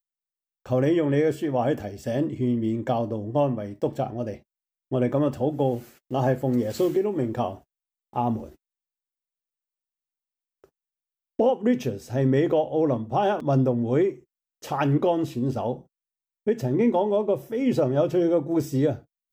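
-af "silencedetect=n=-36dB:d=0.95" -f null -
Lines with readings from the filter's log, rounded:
silence_start: 8.48
silence_end: 11.39 | silence_duration: 2.91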